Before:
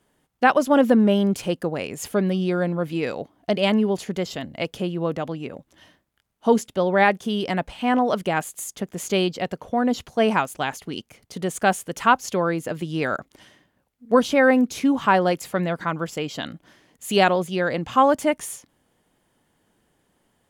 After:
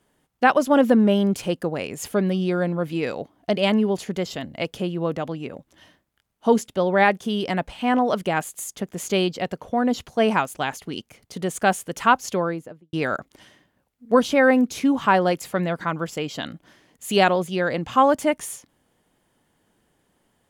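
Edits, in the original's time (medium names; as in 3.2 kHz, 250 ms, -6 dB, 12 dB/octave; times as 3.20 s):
12.28–12.93 s: studio fade out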